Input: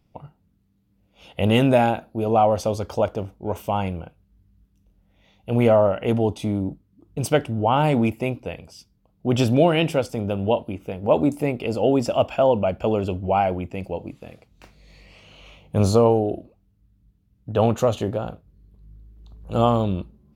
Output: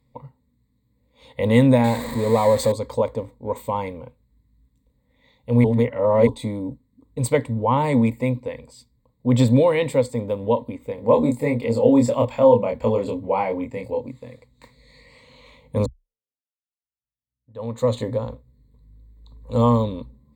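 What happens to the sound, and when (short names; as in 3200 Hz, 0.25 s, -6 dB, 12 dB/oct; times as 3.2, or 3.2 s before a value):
1.84–2.72 zero-crossing step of -25 dBFS
5.64–6.27 reverse
10.95–14.01 doubler 26 ms -3.5 dB
15.86–17.92 fade in exponential
whole clip: ripple EQ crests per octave 1, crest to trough 17 dB; gain -3 dB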